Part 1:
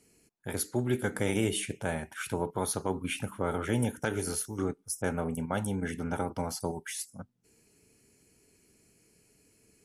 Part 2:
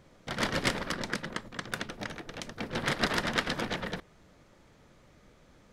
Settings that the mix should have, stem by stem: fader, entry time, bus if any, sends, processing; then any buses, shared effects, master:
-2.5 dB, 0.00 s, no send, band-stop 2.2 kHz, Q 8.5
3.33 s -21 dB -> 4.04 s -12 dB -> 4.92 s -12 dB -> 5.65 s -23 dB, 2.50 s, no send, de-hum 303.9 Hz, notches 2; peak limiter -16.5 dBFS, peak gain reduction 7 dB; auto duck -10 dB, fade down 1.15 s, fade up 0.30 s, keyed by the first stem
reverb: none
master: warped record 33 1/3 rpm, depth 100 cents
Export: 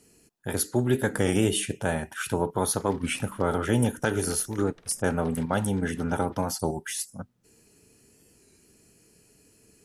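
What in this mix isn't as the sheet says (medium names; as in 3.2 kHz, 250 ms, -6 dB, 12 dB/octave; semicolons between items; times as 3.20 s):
stem 1 -2.5 dB -> +5.5 dB; stem 2 -21.0 dB -> -11.0 dB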